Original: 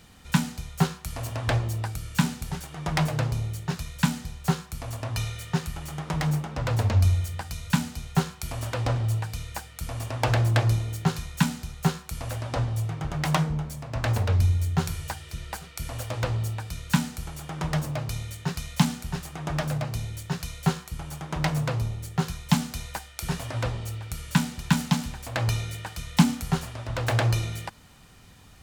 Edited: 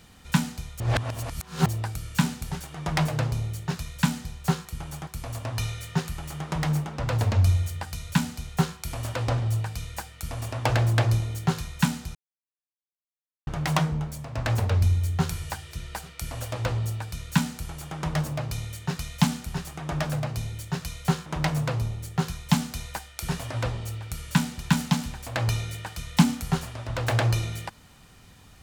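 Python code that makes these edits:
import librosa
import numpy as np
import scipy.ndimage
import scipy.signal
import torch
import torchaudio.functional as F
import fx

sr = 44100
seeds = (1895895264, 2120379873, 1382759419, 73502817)

y = fx.edit(x, sr, fx.reverse_span(start_s=0.8, length_s=0.86),
    fx.silence(start_s=11.73, length_s=1.32),
    fx.move(start_s=20.84, length_s=0.42, to_s=4.65), tone=tone)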